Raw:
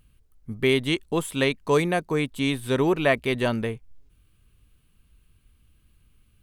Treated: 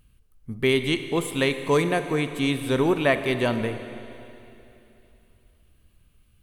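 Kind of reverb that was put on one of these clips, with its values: Schroeder reverb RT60 3 s, combs from 32 ms, DRR 9 dB

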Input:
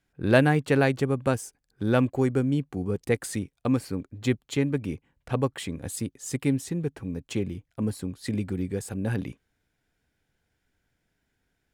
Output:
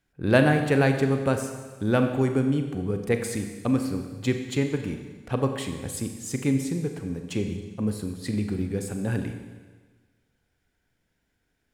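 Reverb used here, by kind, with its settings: Schroeder reverb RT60 1.4 s, combs from 30 ms, DRR 5.5 dB

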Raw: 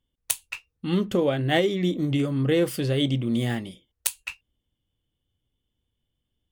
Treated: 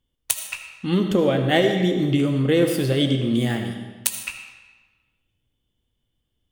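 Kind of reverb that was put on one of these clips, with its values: algorithmic reverb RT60 1.3 s, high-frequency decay 0.85×, pre-delay 35 ms, DRR 5.5 dB; trim +3 dB

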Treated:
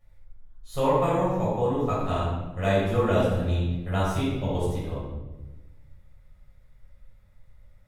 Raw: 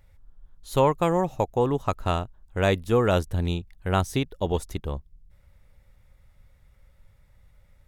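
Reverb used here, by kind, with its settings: simulated room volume 610 m³, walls mixed, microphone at 6.2 m; trim -14.5 dB

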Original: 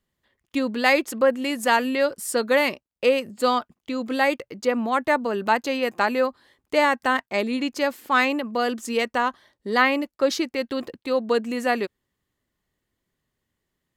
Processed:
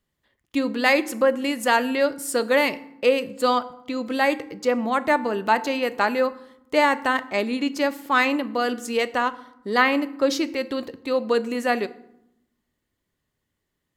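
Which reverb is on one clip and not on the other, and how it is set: FDN reverb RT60 0.78 s, low-frequency decay 1.55×, high-frequency decay 0.65×, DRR 13 dB

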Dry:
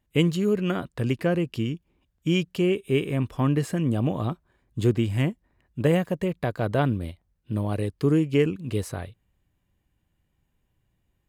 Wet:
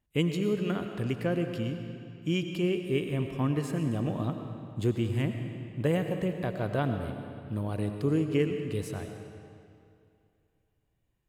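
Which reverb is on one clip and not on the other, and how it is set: algorithmic reverb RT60 2.5 s, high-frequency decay 0.85×, pre-delay 60 ms, DRR 6 dB; trim -6 dB

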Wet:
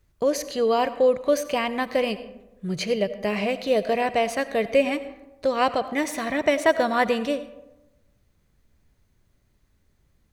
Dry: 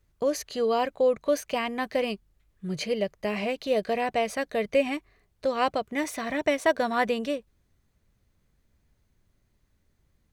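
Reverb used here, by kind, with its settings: algorithmic reverb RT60 1 s, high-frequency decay 0.45×, pre-delay 45 ms, DRR 13 dB; trim +3.5 dB

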